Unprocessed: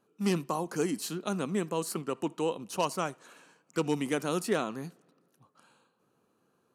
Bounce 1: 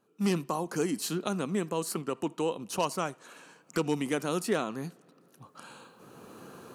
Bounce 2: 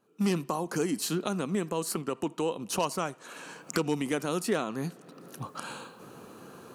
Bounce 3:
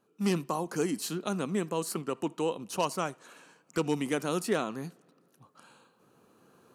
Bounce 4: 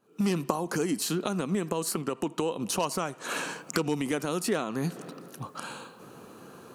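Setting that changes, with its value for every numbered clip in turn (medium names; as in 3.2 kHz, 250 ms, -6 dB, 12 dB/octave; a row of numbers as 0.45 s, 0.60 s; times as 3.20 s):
recorder AGC, rising by: 14 dB/s, 36 dB/s, 5.8 dB/s, 88 dB/s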